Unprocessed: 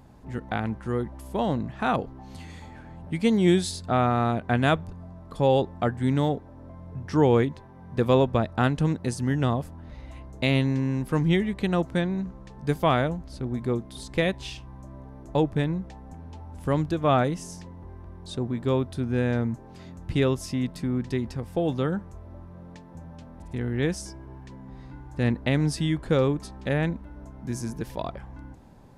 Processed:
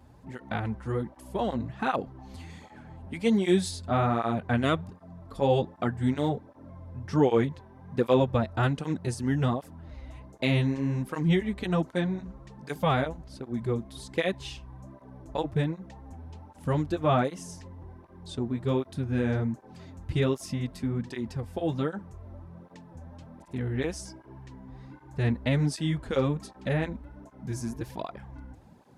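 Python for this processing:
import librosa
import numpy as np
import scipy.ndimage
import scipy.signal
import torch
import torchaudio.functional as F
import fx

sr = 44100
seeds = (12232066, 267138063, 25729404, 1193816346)

y = fx.wow_flutter(x, sr, seeds[0], rate_hz=2.1, depth_cents=28.0)
y = fx.flanger_cancel(y, sr, hz=1.3, depth_ms=7.1)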